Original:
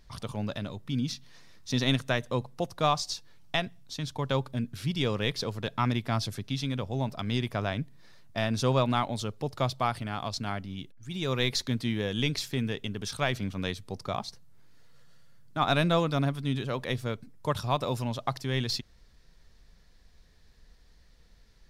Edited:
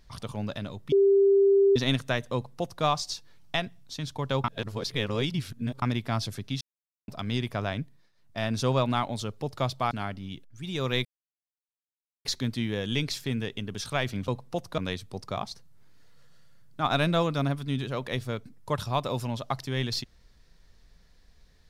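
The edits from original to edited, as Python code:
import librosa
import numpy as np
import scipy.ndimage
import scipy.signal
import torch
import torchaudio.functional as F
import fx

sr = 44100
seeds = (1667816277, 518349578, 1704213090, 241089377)

y = fx.edit(x, sr, fx.bleep(start_s=0.92, length_s=0.84, hz=395.0, db=-16.5),
    fx.duplicate(start_s=2.34, length_s=0.5, to_s=13.55),
    fx.reverse_span(start_s=4.44, length_s=1.38),
    fx.silence(start_s=6.61, length_s=0.47),
    fx.fade_down_up(start_s=7.78, length_s=0.69, db=-18.0, fade_s=0.33),
    fx.cut(start_s=9.91, length_s=0.47),
    fx.insert_silence(at_s=11.52, length_s=1.2), tone=tone)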